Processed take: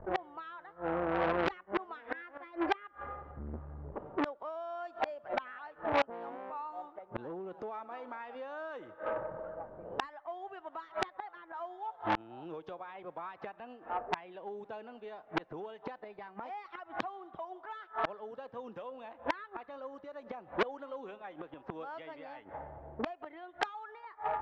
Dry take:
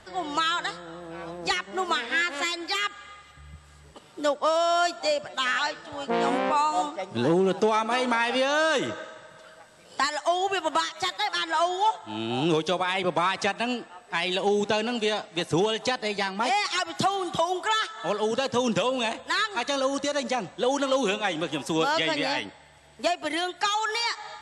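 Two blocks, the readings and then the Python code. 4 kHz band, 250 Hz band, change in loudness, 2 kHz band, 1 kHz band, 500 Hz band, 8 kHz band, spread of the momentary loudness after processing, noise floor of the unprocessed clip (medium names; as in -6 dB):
-22.0 dB, -12.0 dB, -14.0 dB, -14.5 dB, -11.5 dB, -12.5 dB, under -25 dB, 12 LU, -52 dBFS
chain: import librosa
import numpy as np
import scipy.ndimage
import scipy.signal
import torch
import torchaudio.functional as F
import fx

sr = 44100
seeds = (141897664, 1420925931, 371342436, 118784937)

y = scipy.signal.sosfilt(scipy.signal.butter(2, 1200.0, 'lowpass', fs=sr, output='sos'), x)
y = fx.env_lowpass(y, sr, base_hz=540.0, full_db=-22.0)
y = fx.peak_eq(y, sr, hz=170.0, db=-9.5, octaves=2.3)
y = fx.gate_flip(y, sr, shuts_db=-29.0, range_db=-30)
y = fx.transformer_sat(y, sr, knee_hz=2600.0)
y = y * librosa.db_to_amplitude(15.0)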